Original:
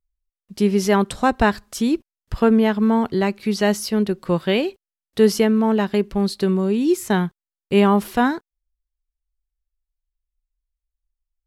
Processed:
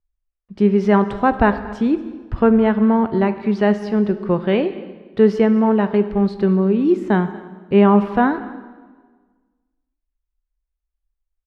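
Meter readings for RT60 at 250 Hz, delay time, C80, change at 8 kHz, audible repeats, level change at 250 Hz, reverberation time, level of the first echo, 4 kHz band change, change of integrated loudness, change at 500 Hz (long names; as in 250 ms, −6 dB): 1.6 s, 232 ms, 13.5 dB, below −20 dB, 1, +2.5 dB, 1.4 s, −21.0 dB, −8.0 dB, +2.5 dB, +2.5 dB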